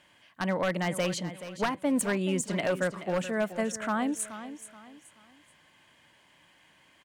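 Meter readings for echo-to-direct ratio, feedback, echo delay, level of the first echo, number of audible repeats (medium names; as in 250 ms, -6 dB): -12.0 dB, 33%, 428 ms, -12.5 dB, 3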